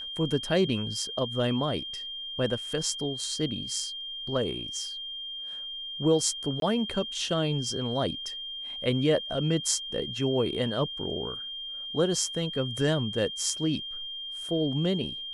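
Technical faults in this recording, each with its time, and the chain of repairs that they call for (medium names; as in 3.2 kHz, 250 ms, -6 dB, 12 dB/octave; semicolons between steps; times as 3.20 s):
whine 3.2 kHz -35 dBFS
6.60–6.62 s: dropout 22 ms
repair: band-stop 3.2 kHz, Q 30; interpolate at 6.60 s, 22 ms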